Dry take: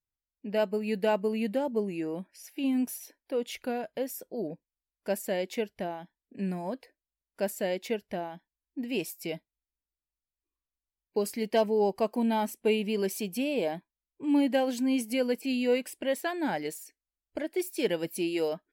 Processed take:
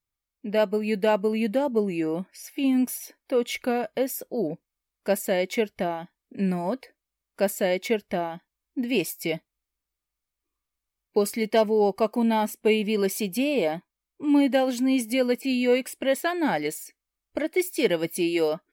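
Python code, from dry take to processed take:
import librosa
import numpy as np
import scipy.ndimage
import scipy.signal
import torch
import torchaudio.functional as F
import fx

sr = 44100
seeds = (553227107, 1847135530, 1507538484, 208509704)

p1 = fx.rider(x, sr, range_db=3, speed_s=0.5)
p2 = x + (p1 * 10.0 ** (-1.0 / 20.0))
y = fx.small_body(p2, sr, hz=(1200.0, 2200.0), ring_ms=45, db=9)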